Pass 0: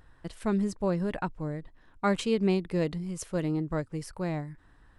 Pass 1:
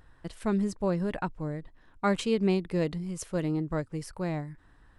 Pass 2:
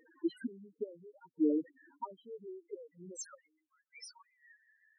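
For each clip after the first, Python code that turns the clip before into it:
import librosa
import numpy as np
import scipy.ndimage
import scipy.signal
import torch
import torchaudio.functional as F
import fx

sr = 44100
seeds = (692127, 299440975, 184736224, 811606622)

y1 = x
y2 = fx.gate_flip(y1, sr, shuts_db=-24.0, range_db=-31)
y2 = fx.filter_sweep_highpass(y2, sr, from_hz=310.0, to_hz=2400.0, start_s=2.47, end_s=3.79, q=1.1)
y2 = fx.spec_topn(y2, sr, count=2)
y2 = y2 * 10.0 ** (12.5 / 20.0)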